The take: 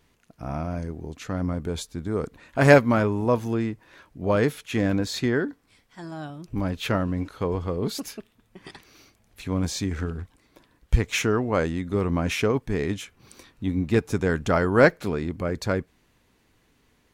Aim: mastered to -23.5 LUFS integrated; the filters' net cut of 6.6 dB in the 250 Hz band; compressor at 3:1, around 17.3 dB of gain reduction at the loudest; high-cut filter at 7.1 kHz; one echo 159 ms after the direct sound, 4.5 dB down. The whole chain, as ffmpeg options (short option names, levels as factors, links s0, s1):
-af "lowpass=7100,equalizer=f=250:t=o:g=-9,acompressor=threshold=0.0178:ratio=3,aecho=1:1:159:0.596,volume=4.47"